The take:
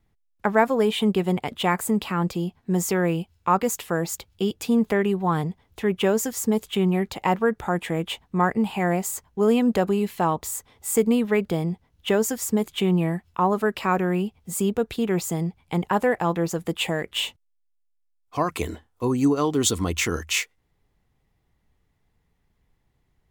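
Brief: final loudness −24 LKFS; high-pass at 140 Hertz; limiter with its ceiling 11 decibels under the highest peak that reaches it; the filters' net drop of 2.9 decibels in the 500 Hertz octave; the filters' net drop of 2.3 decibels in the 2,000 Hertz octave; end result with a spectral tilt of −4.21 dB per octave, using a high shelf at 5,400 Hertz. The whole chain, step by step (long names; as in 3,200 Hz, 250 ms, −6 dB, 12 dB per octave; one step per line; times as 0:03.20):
high-pass filter 140 Hz
parametric band 500 Hz −3.5 dB
parametric band 2,000 Hz −4 dB
high-shelf EQ 5,400 Hz +8.5 dB
level +2.5 dB
brickwall limiter −13 dBFS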